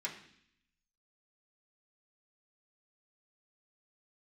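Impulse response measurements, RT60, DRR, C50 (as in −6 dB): 0.65 s, −5.0 dB, 9.0 dB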